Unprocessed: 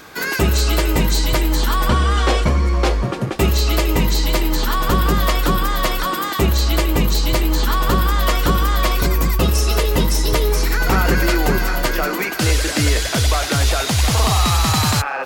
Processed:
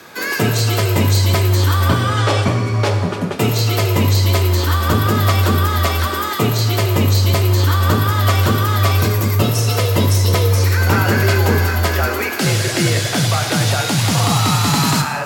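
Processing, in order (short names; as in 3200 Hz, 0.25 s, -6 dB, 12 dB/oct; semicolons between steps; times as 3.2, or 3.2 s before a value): non-linear reverb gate 0.37 s falling, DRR 5 dB; frequency shift +48 Hz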